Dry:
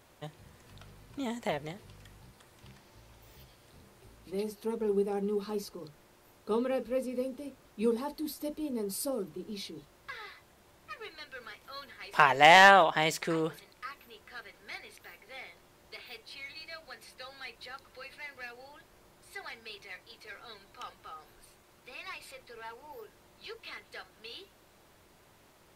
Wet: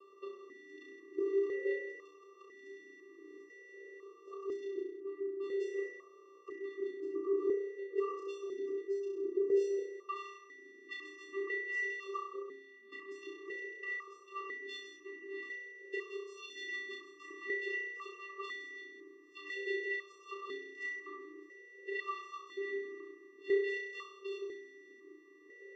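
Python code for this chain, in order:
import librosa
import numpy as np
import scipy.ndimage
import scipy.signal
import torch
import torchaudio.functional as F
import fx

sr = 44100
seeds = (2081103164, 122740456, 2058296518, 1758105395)

y = fx.pitch_trill(x, sr, semitones=10.0, every_ms=376)
y = fx.over_compress(y, sr, threshold_db=-41.0, ratio=-1.0)
y = fx.vocoder(y, sr, bands=8, carrier='square', carrier_hz=392.0)
y = fx.room_flutter(y, sr, wall_m=5.6, rt60_s=0.79)
y = fx.vowel_held(y, sr, hz=2.0)
y = y * 10.0 ** (14.0 / 20.0)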